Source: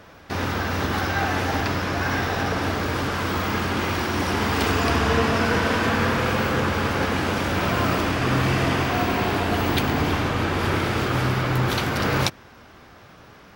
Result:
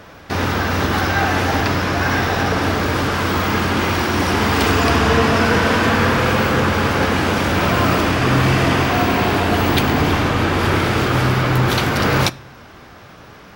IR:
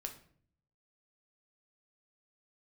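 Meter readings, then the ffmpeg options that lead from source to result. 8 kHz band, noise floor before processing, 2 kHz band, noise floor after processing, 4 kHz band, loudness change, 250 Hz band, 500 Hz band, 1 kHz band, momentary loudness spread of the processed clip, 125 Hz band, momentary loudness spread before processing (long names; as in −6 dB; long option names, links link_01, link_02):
+6.0 dB, −48 dBFS, +6.0 dB, −41 dBFS, +6.0 dB, +6.0 dB, +6.0 dB, +6.0 dB, +6.0 dB, 3 LU, +6.0 dB, 4 LU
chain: -filter_complex "[0:a]asplit=2[link_01][link_02];[1:a]atrim=start_sample=2205[link_03];[link_02][link_03]afir=irnorm=-1:irlink=0,volume=-10dB[link_04];[link_01][link_04]amix=inputs=2:normalize=0,acontrast=43,volume=-1dB"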